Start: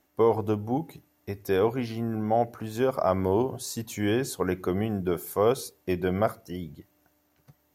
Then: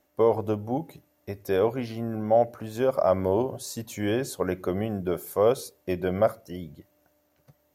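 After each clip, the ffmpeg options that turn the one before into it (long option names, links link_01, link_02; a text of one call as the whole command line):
ffmpeg -i in.wav -af "equalizer=frequency=570:width_type=o:width=0.29:gain=9.5,volume=-1.5dB" out.wav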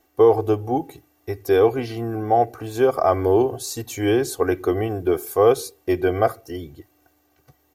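ffmpeg -i in.wav -af "aecho=1:1:2.6:0.87,volume=4dB" out.wav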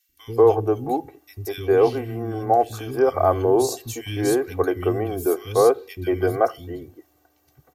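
ffmpeg -i in.wav -filter_complex "[0:a]acrossover=split=230|2200[link_01][link_02][link_03];[link_01]adelay=90[link_04];[link_02]adelay=190[link_05];[link_04][link_05][link_03]amix=inputs=3:normalize=0" out.wav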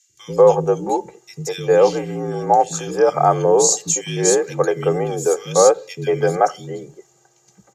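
ffmpeg -i in.wav -af "afreqshift=55,lowpass=frequency=6900:width_type=q:width=7.6,volume=3.5dB" out.wav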